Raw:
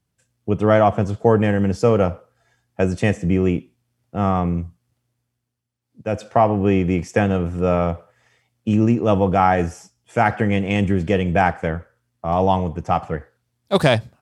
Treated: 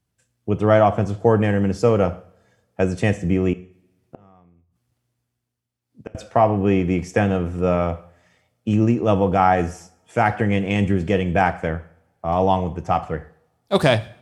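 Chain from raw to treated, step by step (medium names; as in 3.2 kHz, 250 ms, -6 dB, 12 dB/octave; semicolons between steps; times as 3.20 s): 3.53–6.15 s: inverted gate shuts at -21 dBFS, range -32 dB; two-slope reverb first 0.53 s, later 1.8 s, from -25 dB, DRR 13 dB; trim -1 dB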